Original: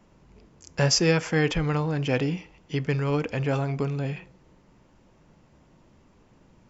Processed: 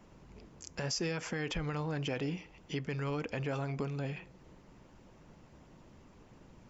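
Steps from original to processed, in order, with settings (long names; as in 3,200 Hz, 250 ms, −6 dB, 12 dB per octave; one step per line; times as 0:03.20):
harmonic and percussive parts rebalanced percussive +5 dB
downward compressor 1.5 to 1, threshold −43 dBFS, peak gain reduction 10.5 dB
brickwall limiter −23.5 dBFS, peak gain reduction 8 dB
level −2.5 dB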